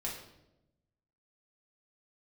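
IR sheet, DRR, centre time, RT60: -4.0 dB, 38 ms, 0.90 s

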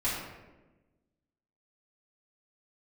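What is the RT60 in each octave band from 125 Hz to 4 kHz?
1.5, 1.6, 1.3, 1.0, 0.90, 0.65 s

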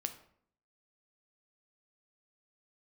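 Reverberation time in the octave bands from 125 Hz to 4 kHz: 0.75, 0.75, 0.65, 0.60, 0.50, 0.40 s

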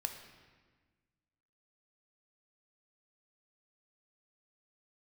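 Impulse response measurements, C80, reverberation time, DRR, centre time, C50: 9.0 dB, 1.4 s, 5.0 dB, 26 ms, 7.5 dB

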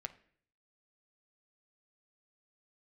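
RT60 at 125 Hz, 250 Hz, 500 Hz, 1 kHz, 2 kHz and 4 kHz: 0.75, 0.65, 0.60, 0.50, 0.60, 0.50 s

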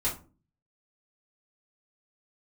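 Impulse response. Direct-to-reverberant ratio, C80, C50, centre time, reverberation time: -7.0 dB, 17.0 dB, 9.5 dB, 23 ms, 0.35 s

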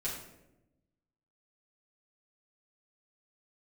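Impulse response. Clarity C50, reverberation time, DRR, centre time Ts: 4.0 dB, 0.90 s, -8.0 dB, 41 ms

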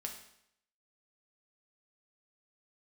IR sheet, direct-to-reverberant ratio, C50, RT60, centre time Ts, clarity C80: 1.5 dB, 7.0 dB, 0.75 s, 22 ms, 10.0 dB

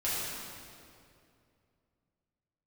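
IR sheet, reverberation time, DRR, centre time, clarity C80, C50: 2.5 s, -10.5 dB, 0.151 s, -1.0 dB, -3.0 dB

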